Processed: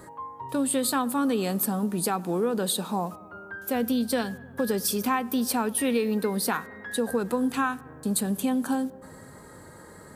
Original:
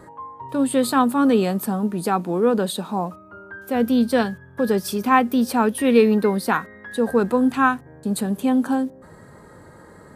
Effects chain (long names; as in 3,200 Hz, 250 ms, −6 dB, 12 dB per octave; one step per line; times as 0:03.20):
high-shelf EQ 4,000 Hz +11 dB
downward compressor 5 to 1, threshold −20 dBFS, peak gain reduction 10.5 dB
feedback echo with a low-pass in the loop 103 ms, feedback 74%, low-pass 2,200 Hz, level −21.5 dB
level −2.5 dB